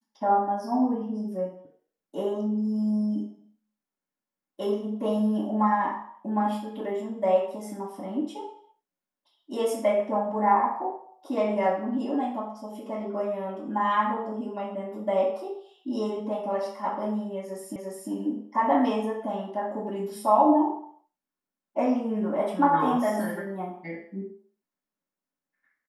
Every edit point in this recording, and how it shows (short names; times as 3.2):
17.76 repeat of the last 0.35 s